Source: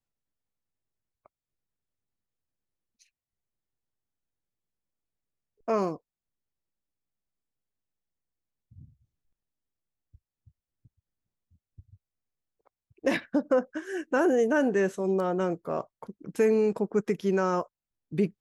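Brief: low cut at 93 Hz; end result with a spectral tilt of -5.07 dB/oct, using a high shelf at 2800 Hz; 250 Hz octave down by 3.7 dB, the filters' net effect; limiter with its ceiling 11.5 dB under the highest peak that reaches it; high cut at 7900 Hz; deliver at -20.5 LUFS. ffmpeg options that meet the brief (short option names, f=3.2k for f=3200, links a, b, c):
-af "highpass=93,lowpass=7.9k,equalizer=f=250:t=o:g=-5,highshelf=f=2.8k:g=4,volume=15dB,alimiter=limit=-9.5dB:level=0:latency=1"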